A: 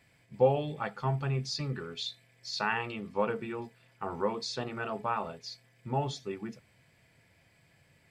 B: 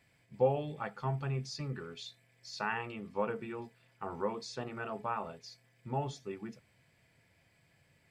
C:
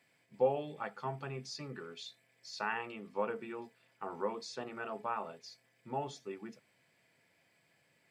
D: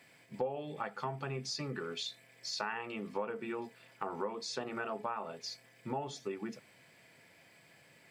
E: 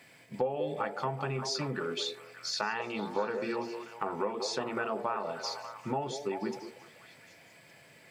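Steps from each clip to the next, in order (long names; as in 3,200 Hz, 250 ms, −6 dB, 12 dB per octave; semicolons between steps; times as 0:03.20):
dynamic equaliser 3,900 Hz, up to −7 dB, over −52 dBFS, Q 1.8; level −4 dB
high-pass filter 220 Hz 12 dB per octave; level −1 dB
downward compressor 4 to 1, threshold −46 dBFS, peak gain reduction 18.5 dB; level +10 dB
echo through a band-pass that steps 194 ms, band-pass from 470 Hz, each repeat 0.7 octaves, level −4 dB; level +4.5 dB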